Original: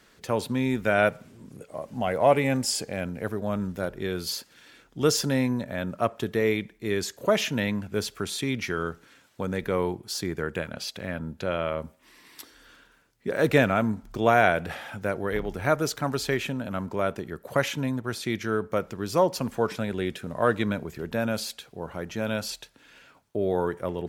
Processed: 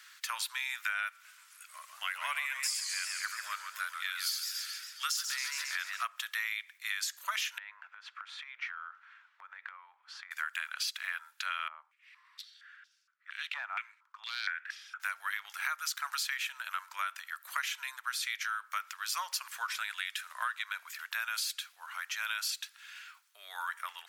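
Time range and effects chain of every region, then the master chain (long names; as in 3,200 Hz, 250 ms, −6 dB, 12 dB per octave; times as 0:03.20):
0:01.10–0:06.03: parametric band 760 Hz −8.5 dB 0.53 octaves + feedback echo with a swinging delay time 137 ms, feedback 60%, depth 163 cents, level −7.5 dB
0:07.58–0:10.31: band-pass filter 490–2,200 Hz + tilt shelving filter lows +8 dB, about 1,200 Hz + downward compressor 16 to 1, threshold −36 dBFS
0:11.68–0:15.00: hard clipping −10.5 dBFS + band-pass on a step sequencer 4.3 Hz 790–5,200 Hz
whole clip: Butterworth high-pass 1,200 Hz 36 dB per octave; high-shelf EQ 12,000 Hz +3.5 dB; downward compressor 10 to 1, threshold −36 dBFS; level +5 dB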